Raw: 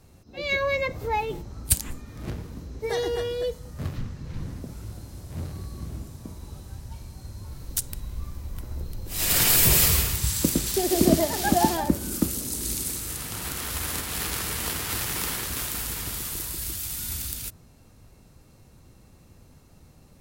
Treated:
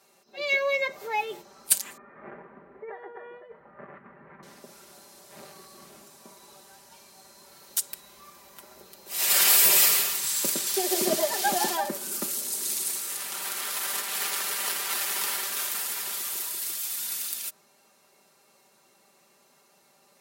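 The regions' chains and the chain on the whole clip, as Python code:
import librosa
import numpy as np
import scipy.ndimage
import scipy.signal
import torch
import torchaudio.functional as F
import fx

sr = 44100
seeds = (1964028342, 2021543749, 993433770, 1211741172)

y = fx.chain(x, sr, fx.steep_lowpass(hz=2000.0, slope=36),
    fx.over_compress(threshold_db=-32.0, ratio=-1.0), at=(1.97, 4.43))
y = scipy.signal.sosfilt(scipy.signal.butter(2, 550.0, 'highpass', fs=sr, output='sos'), y)
y = y + 0.74 * np.pad(y, (int(5.1 * sr / 1000.0), 0))[:len(y)]
y = y * librosa.db_to_amplitude(-1.0)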